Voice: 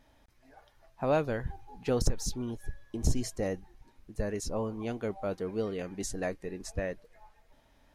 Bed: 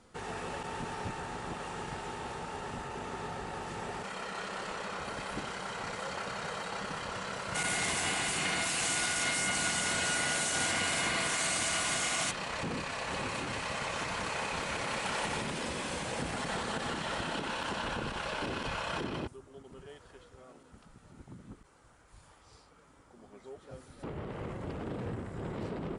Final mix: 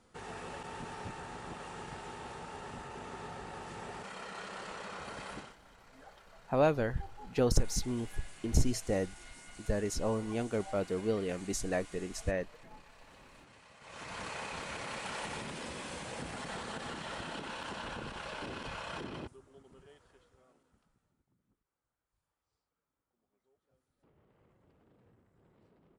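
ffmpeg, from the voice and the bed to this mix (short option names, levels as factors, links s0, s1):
-filter_complex "[0:a]adelay=5500,volume=1.06[s0];[1:a]volume=3.76,afade=t=out:st=5.31:d=0.25:silence=0.133352,afade=t=in:st=13.8:d=0.41:silence=0.149624,afade=t=out:st=19.38:d=1.85:silence=0.0707946[s1];[s0][s1]amix=inputs=2:normalize=0"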